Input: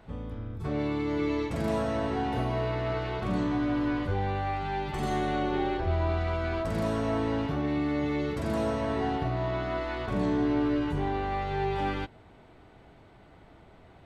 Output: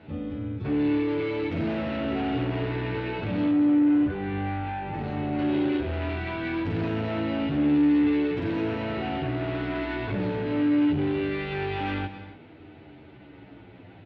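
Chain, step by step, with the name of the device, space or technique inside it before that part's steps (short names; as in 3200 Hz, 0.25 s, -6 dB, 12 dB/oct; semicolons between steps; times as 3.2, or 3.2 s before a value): barber-pole flanger into a guitar amplifier (endless flanger 10.1 ms -0.55 Hz; soft clip -33.5 dBFS, distortion -10 dB; speaker cabinet 92–3900 Hz, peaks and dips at 97 Hz +7 dB, 300 Hz +8 dB, 700 Hz -4 dB, 1100 Hz -8 dB, 2600 Hz +5 dB); 3.51–5.39 LPF 1600 Hz 6 dB/oct; non-linear reverb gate 0.31 s rising, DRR 12 dB; gain +8 dB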